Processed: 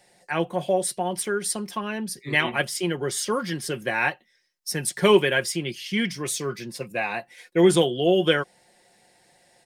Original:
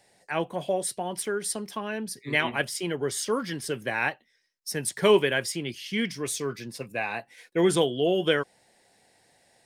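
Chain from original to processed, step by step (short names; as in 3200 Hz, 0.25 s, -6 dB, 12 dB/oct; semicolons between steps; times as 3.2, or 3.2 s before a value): comb 5.6 ms, depth 44%; gain +2.5 dB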